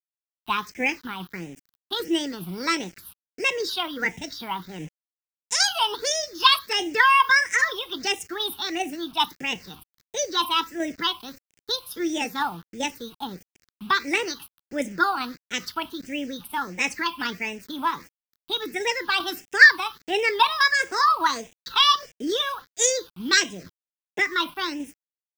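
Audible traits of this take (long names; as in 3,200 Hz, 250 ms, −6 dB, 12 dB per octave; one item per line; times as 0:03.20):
a quantiser's noise floor 8 bits, dither none
tremolo saw down 2.5 Hz, depth 30%
phaser sweep stages 6, 1.5 Hz, lowest notch 490–1,200 Hz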